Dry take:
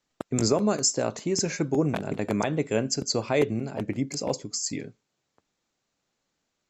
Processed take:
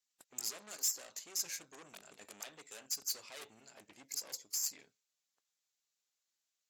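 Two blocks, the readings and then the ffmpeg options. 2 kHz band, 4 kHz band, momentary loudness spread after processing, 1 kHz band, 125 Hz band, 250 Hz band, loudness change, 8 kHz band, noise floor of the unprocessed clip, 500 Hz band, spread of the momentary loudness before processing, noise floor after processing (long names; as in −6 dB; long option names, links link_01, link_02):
−16.5 dB, −10.5 dB, 20 LU, −23.5 dB, below −40 dB, −36.0 dB, −12.5 dB, −7.5 dB, −80 dBFS, −31.0 dB, 8 LU, below −85 dBFS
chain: -af "aeval=exprs='(tanh(28.2*val(0)+0.65)-tanh(0.65))/28.2':channel_layout=same,aderivative" -ar 44100 -c:a aac -b:a 64k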